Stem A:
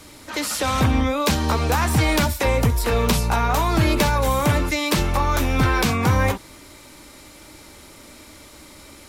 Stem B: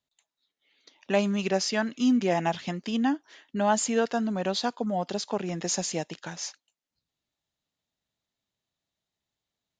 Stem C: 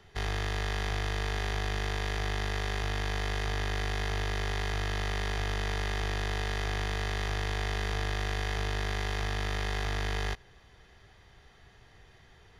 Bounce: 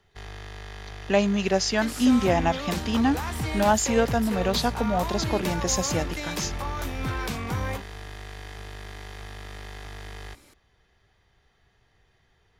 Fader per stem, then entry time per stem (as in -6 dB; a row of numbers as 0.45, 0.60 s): -11.5, +3.0, -8.0 dB; 1.45, 0.00, 0.00 s